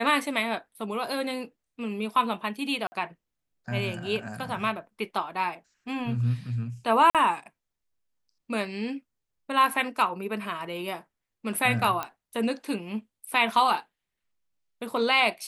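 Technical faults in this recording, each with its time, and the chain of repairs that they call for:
0:02.87–0:02.92: drop-out 50 ms
0:07.10–0:07.15: drop-out 47 ms
0:12.03: click −16 dBFS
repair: click removal
repair the gap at 0:02.87, 50 ms
repair the gap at 0:07.10, 47 ms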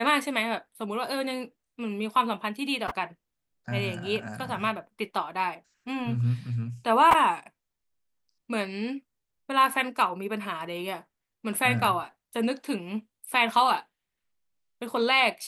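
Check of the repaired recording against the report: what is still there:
none of them is left

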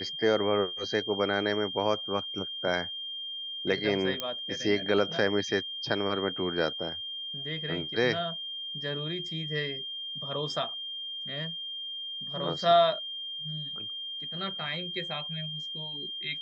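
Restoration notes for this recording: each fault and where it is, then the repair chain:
whistle 3,200 Hz −35 dBFS
0:04.20: click −15 dBFS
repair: click removal
notch filter 3,200 Hz, Q 30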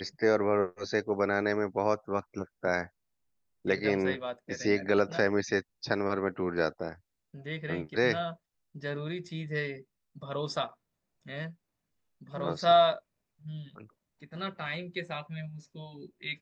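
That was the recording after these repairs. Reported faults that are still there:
none of them is left

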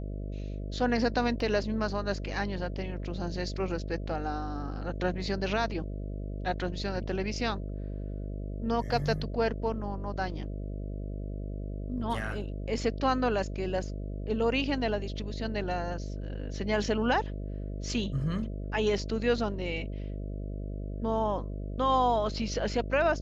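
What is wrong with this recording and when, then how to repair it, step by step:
mains buzz 50 Hz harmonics 13 −36 dBFS
0:01.40: drop-out 2.4 ms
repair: hum removal 50 Hz, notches 13
repair the gap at 0:01.40, 2.4 ms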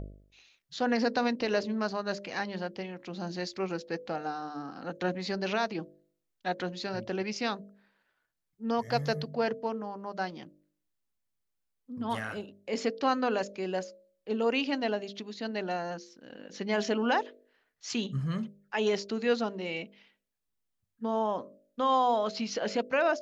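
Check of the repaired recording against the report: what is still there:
none of them is left

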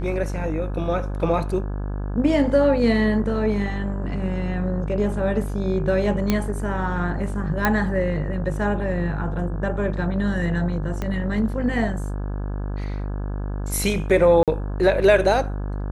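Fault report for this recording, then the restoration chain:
mains buzz 50 Hz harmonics 34 −27 dBFS
0:06.30: click −6 dBFS
0:07.65: click −5 dBFS
0:11.02: click −14 dBFS
0:14.43–0:14.48: drop-out 47 ms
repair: click removal
hum removal 50 Hz, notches 34
repair the gap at 0:14.43, 47 ms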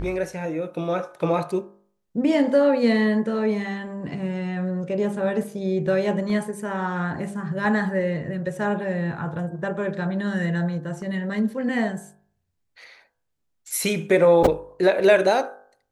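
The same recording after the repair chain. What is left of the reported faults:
0:11.02: click

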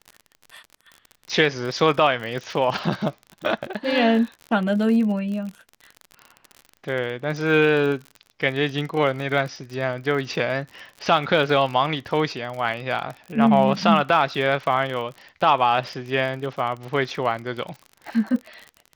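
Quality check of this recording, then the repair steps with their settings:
surface crackle 41 per second −30 dBFS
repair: click removal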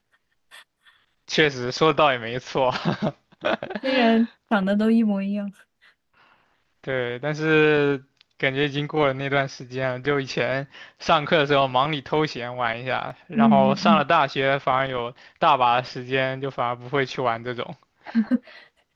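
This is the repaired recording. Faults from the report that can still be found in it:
none of them is left

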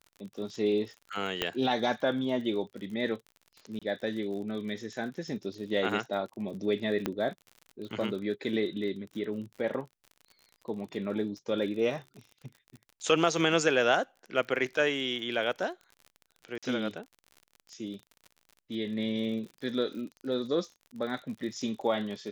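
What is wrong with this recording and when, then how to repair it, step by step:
surface crackle 47 per second −40 dBFS
0:01.42: click −13 dBFS
0:03.79–0:03.82: drop-out 26 ms
0:07.06: click −15 dBFS
0:16.58–0:16.63: drop-out 46 ms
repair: click removal
repair the gap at 0:03.79, 26 ms
repair the gap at 0:16.58, 46 ms

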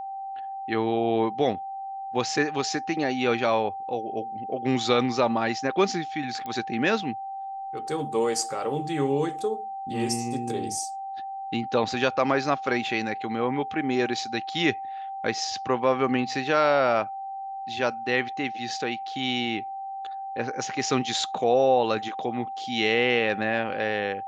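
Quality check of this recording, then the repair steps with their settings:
whistle 780 Hz −32 dBFS
0:06.46: click −22 dBFS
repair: click removal
notch filter 780 Hz, Q 30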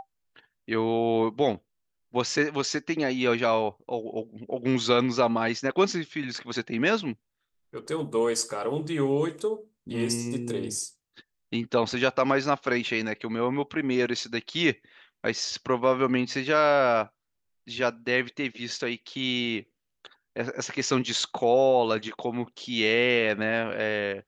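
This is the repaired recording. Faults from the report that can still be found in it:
none of them is left

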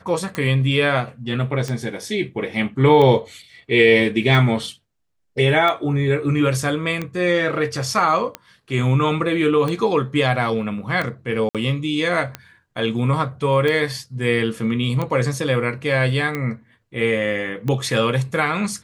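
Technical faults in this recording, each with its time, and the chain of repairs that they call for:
scratch tick 45 rpm −12 dBFS
0:11.49–0:11.55: drop-out 57 ms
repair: click removal
repair the gap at 0:11.49, 57 ms

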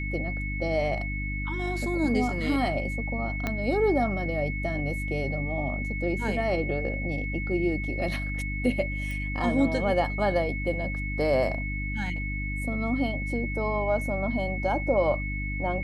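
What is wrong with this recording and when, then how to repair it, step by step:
mains hum 50 Hz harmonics 6 −32 dBFS
whistle 2,200 Hz −34 dBFS
0:03.47: click −14 dBFS
0:09.11: click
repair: click removal
notch filter 2,200 Hz, Q 30
hum removal 50 Hz, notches 6

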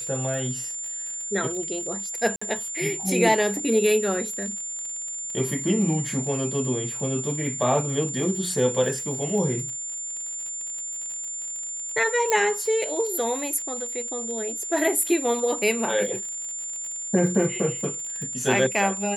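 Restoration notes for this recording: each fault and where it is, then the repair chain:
surface crackle 52 per second −32 dBFS
whistle 7,200 Hz −30 dBFS
0:02.36–0:02.42: drop-out 55 ms
0:12.30: click −9 dBFS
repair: click removal
notch filter 7,200 Hz, Q 30
repair the gap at 0:02.36, 55 ms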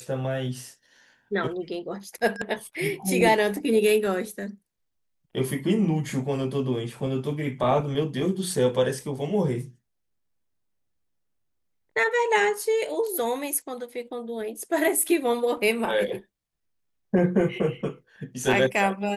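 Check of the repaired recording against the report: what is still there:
none of them is left

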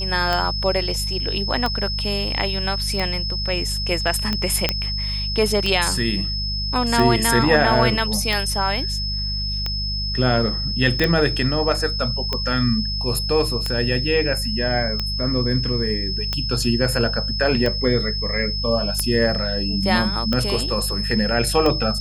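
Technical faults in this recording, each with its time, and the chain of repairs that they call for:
mains hum 50 Hz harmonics 4 −27 dBFS
scratch tick 45 rpm −9 dBFS
whistle 5,200 Hz −25 dBFS
0:04.69: click −3 dBFS
0:11.04: click −6 dBFS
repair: click removal
hum removal 50 Hz, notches 4
notch filter 5,200 Hz, Q 30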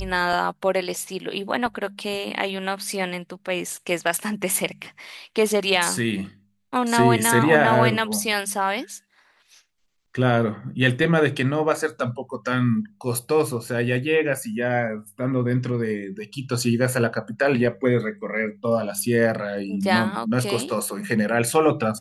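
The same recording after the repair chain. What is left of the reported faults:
none of them is left

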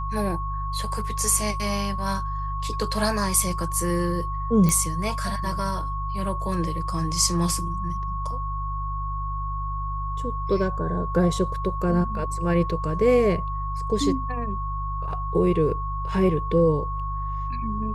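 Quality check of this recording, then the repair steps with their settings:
mains hum 50 Hz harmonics 3 −30 dBFS
whistle 1,100 Hz −30 dBFS
0:04.69: click −10 dBFS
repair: click removal
hum removal 50 Hz, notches 3
notch filter 1,100 Hz, Q 30

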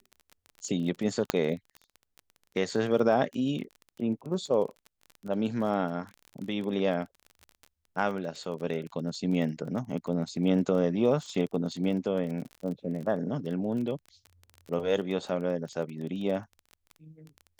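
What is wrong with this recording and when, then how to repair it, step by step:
surface crackle 23 per second −36 dBFS
0:01.30: click −9 dBFS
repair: click removal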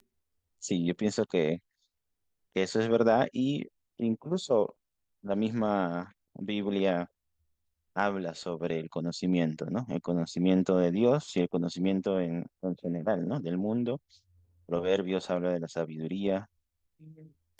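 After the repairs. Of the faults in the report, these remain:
none of them is left

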